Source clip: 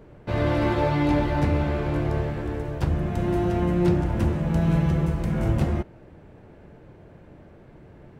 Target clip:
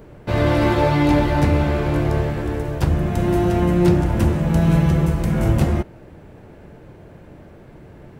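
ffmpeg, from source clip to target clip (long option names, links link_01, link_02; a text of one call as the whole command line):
ffmpeg -i in.wav -af "crystalizer=i=1:c=0,volume=5.5dB" out.wav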